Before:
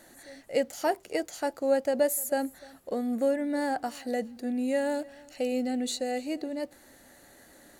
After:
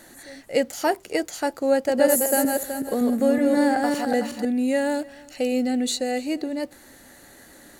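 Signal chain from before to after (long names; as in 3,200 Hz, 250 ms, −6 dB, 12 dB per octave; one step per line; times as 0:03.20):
0:01.70–0:04.45: feedback delay that plays each chunk backwards 187 ms, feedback 48%, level −2.5 dB
parametric band 630 Hz −3.5 dB 0.71 octaves
level +7 dB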